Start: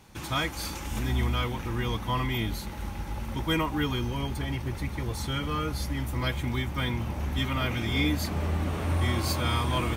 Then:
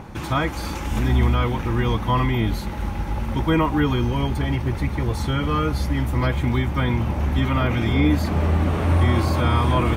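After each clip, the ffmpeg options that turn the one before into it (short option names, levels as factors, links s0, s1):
-filter_complex "[0:a]highshelf=f=3400:g=-9.5,acrossover=split=1800[s0][s1];[s0]acompressor=mode=upward:threshold=0.0112:ratio=2.5[s2];[s1]alimiter=level_in=4.47:limit=0.0631:level=0:latency=1:release=32,volume=0.224[s3];[s2][s3]amix=inputs=2:normalize=0,volume=2.82"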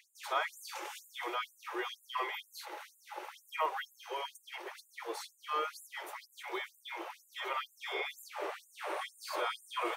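-af "afftfilt=real='re*gte(b*sr/1024,310*pow(7000/310,0.5+0.5*sin(2*PI*2.1*pts/sr)))':imag='im*gte(b*sr/1024,310*pow(7000/310,0.5+0.5*sin(2*PI*2.1*pts/sr)))':win_size=1024:overlap=0.75,volume=0.376"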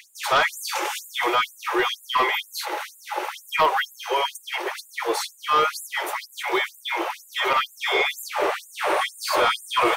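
-af "aeval=exprs='0.112*sin(PI/2*2.24*val(0)/0.112)':c=same,volume=2"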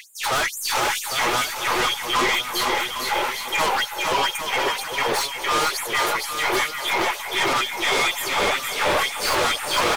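-filter_complex "[0:a]aeval=exprs='0.237*(cos(1*acos(clip(val(0)/0.237,-1,1)))-cos(1*PI/2))+0.075*(cos(2*acos(clip(val(0)/0.237,-1,1)))-cos(2*PI/2))+0.0266*(cos(4*acos(clip(val(0)/0.237,-1,1)))-cos(4*PI/2))+0.0944*(cos(5*acos(clip(val(0)/0.237,-1,1)))-cos(5*PI/2))+0.00944*(cos(8*acos(clip(val(0)/0.237,-1,1)))-cos(8*PI/2))':c=same,flanger=delay=1.9:depth=5.1:regen=-57:speed=0.33:shape=sinusoidal,asplit=2[s0][s1];[s1]aecho=0:1:460|805|1064|1258|1403:0.631|0.398|0.251|0.158|0.1[s2];[s0][s2]amix=inputs=2:normalize=0"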